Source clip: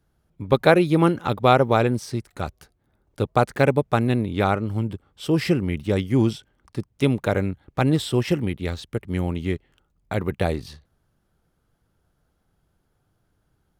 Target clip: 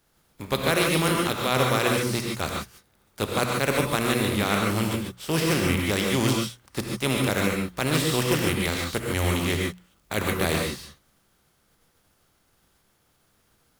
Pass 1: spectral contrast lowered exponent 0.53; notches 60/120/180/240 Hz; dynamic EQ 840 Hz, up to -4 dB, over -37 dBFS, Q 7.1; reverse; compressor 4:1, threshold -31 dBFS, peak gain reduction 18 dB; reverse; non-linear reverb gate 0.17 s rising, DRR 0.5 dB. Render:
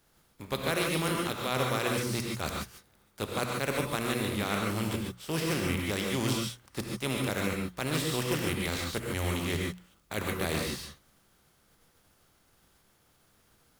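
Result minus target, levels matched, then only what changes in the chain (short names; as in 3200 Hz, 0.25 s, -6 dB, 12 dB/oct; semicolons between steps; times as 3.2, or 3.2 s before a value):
compressor: peak gain reduction +7 dB
change: compressor 4:1, threshold -21.5 dBFS, peak gain reduction 11 dB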